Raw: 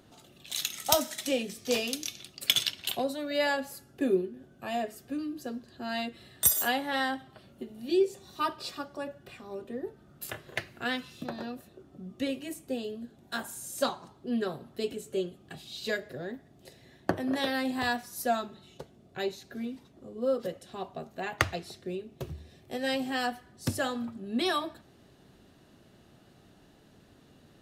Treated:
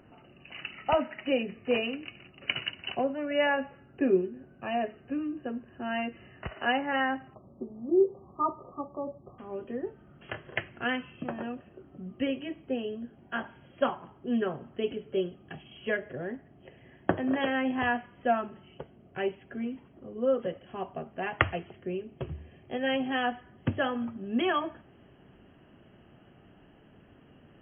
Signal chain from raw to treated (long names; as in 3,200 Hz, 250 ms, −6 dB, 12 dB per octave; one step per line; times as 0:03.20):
linear-phase brick-wall low-pass 3,000 Hz, from 0:07.33 1,300 Hz, from 0:09.38 3,300 Hz
level +2 dB